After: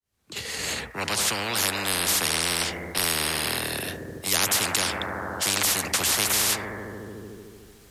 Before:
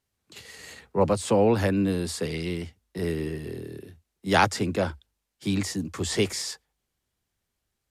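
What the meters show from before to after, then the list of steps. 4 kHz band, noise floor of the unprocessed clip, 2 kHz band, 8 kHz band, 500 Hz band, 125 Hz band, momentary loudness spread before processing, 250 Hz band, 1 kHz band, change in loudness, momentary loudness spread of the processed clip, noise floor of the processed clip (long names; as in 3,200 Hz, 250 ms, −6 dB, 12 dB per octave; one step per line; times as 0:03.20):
+10.5 dB, −81 dBFS, +6.0 dB, +13.0 dB, −7.0 dB, −6.5 dB, 19 LU, −8.0 dB, −0.5 dB, +2.5 dB, 14 LU, −52 dBFS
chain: fade in at the beginning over 2.34 s
bucket-brigade delay 74 ms, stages 1,024, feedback 77%, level −15.5 dB
every bin compressed towards the loudest bin 10 to 1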